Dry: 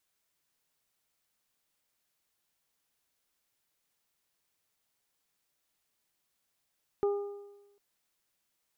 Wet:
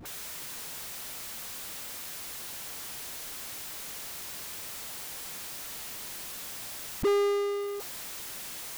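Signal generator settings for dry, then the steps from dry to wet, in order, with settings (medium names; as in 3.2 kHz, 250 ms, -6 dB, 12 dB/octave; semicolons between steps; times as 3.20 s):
additive tone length 0.75 s, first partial 405 Hz, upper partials -12.5/-17.5 dB, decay 1.06 s, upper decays 0.92/0.92 s, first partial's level -23.5 dB
in parallel at -0.5 dB: peak limiter -34 dBFS; on the sum: phase dispersion highs, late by 56 ms, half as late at 560 Hz; power-law waveshaper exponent 0.35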